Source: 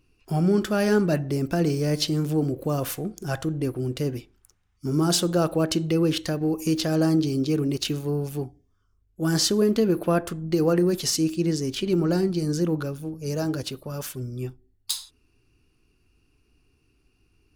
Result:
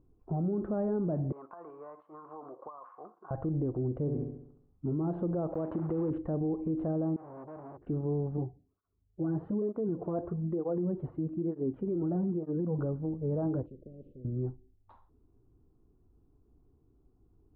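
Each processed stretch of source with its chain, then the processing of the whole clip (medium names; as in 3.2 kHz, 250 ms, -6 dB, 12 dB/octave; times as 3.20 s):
1.32–3.31 s: resonant high-pass 1.1 kHz, resonance Q 8.2 + compression 10:1, threshold -38 dBFS
4.00–4.86 s: peaking EQ 1.7 kHz -3 dB 2.8 oct + flutter echo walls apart 11.6 m, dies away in 0.72 s
5.52–6.11 s: block-companded coder 3-bit + tilt EQ +2 dB/octave
7.16–7.87 s: four-pole ladder low-pass 1.9 kHz, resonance 60% + transformer saturation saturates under 3.7 kHz
8.37–12.79 s: boxcar filter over 6 samples + cancelling through-zero flanger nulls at 1.1 Hz, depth 5.2 ms
13.66–14.25 s: inverse Chebyshev band-stop 790–1900 Hz, stop band 60 dB + spectrum-flattening compressor 4:1
whole clip: inverse Chebyshev low-pass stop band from 5.3 kHz, stop band 80 dB; compression, threshold -23 dBFS; peak limiter -25 dBFS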